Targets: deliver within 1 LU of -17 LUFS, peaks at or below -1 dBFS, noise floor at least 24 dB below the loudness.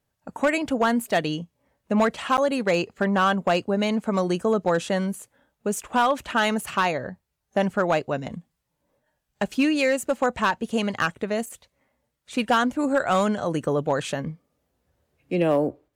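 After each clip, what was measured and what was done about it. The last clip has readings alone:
clipped samples 0.4%; clipping level -13.5 dBFS; dropouts 1; longest dropout 9.1 ms; loudness -24.0 LUFS; peak level -13.5 dBFS; loudness target -17.0 LUFS
-> clip repair -13.5 dBFS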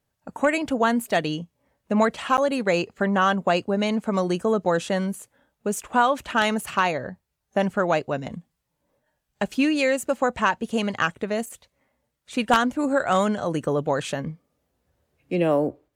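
clipped samples 0.0%; dropouts 1; longest dropout 9.1 ms
-> interpolate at 2.37 s, 9.1 ms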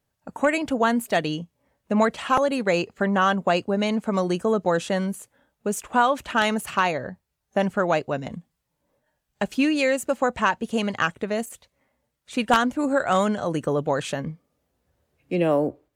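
dropouts 0; loudness -24.0 LUFS; peak level -4.5 dBFS; loudness target -17.0 LUFS
-> trim +7 dB; peak limiter -1 dBFS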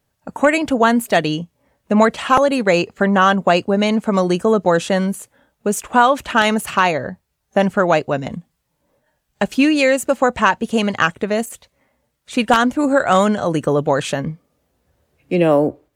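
loudness -17.0 LUFS; peak level -1.0 dBFS; noise floor -72 dBFS

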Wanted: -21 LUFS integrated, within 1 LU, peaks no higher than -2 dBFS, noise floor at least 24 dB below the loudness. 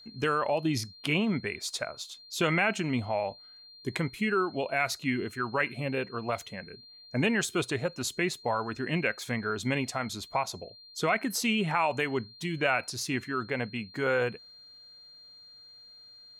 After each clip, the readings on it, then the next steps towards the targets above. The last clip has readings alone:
steady tone 4.2 kHz; tone level -50 dBFS; loudness -30.0 LUFS; peak level -13.0 dBFS; loudness target -21.0 LUFS
-> band-stop 4.2 kHz, Q 30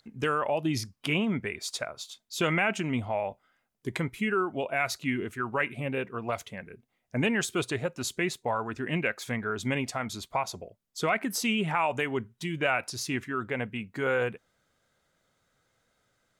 steady tone not found; loudness -30.5 LUFS; peak level -13.0 dBFS; loudness target -21.0 LUFS
-> trim +9.5 dB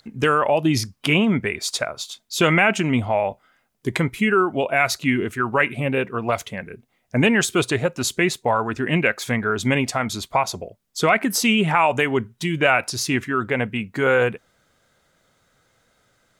loudness -21.0 LUFS; peak level -3.5 dBFS; noise floor -66 dBFS

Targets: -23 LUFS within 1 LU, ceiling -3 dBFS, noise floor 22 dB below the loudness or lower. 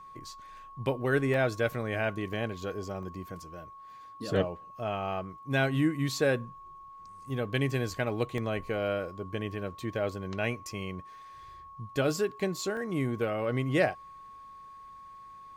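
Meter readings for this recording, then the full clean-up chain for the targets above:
dropouts 5; longest dropout 1.3 ms; steady tone 1.1 kHz; tone level -46 dBFS; loudness -31.5 LUFS; peak level -13.5 dBFS; loudness target -23.0 LUFS
-> interpolate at 1.34/2.33/3.03/8.38/12.77 s, 1.3 ms; band-stop 1.1 kHz, Q 30; trim +8.5 dB

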